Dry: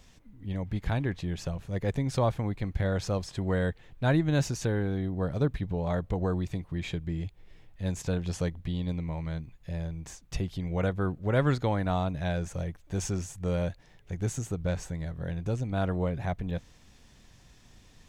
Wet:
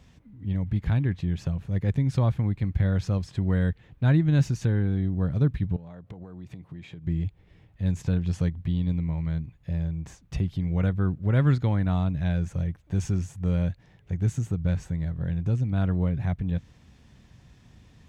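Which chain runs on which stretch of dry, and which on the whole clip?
5.76–7.07 HPF 130 Hz + compressor 10:1, threshold -42 dBFS
whole clip: dynamic EQ 650 Hz, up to -6 dB, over -43 dBFS, Q 0.79; HPF 63 Hz; tone controls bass +8 dB, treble -7 dB

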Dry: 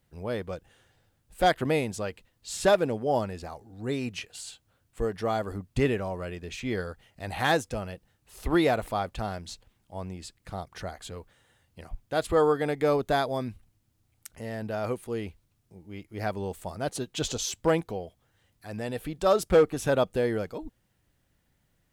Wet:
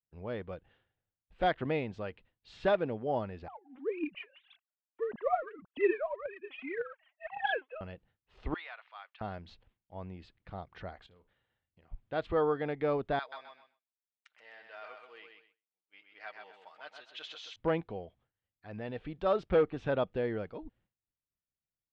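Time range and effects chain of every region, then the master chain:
3.48–7.81 sine-wave speech + phaser 1.8 Hz, delay 4 ms, feedback 73%
8.54–9.21 Bessel high-pass 1700 Hz, order 4 + de-esser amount 90% + air absorption 160 m
11.06–11.92 high shelf 4700 Hz +4.5 dB + compressor 16:1, threshold -52 dBFS + flutter echo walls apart 8.6 m, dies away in 0.27 s
13.19–17.56 HPF 1400 Hz + comb 6.5 ms, depth 40% + feedback echo 0.128 s, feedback 30%, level -5 dB
whole clip: expander -55 dBFS; LPF 3400 Hz 24 dB/oct; gain -6.5 dB

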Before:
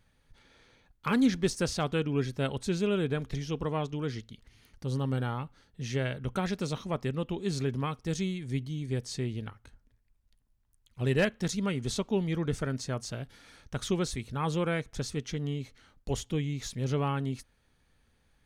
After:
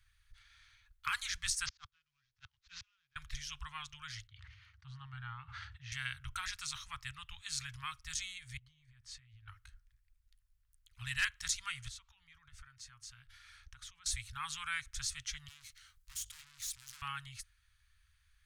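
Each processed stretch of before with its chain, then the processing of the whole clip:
1.66–3.16 CVSD 32 kbps + auto swell 0.137 s + flipped gate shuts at -27 dBFS, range -36 dB
4.27–5.92 HPF 76 Hz 24 dB/oct + tape spacing loss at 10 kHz 30 dB + sustainer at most 36 dB/s
8.57–9.48 LPF 1500 Hz 6 dB/oct + compressor 20:1, threshold -43 dBFS
11.88–14.06 compressor, threshold -43 dBFS + high shelf 4100 Hz -5.5 dB
15.48–17.02 notches 50/100/150/200/250/300/350/400 Hz + tube stage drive 49 dB, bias 0.5 + high shelf 4000 Hz +12 dB
whole clip: inverse Chebyshev band-stop 210–550 Hz, stop band 60 dB; dynamic EQ 8100 Hz, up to +6 dB, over -56 dBFS, Q 0.9; gain -1 dB

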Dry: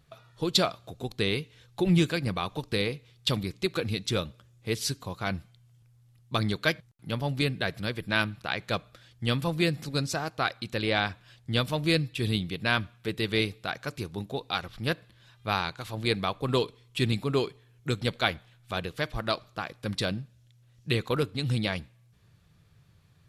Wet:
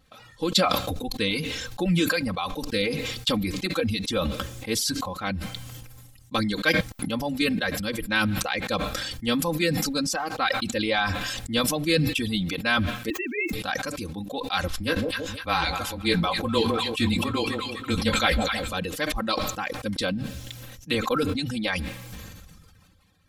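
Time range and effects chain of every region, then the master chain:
13.1–13.53 sine-wave speech + sample gate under -54.5 dBFS
14.68–18.73 frequency shift -21 Hz + doubler 18 ms -7.5 dB + split-band echo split 800 Hz, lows 0.158 s, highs 0.25 s, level -10.5 dB
whole clip: reverb removal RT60 1.4 s; comb 3.8 ms, depth 93%; sustainer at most 27 dB/s

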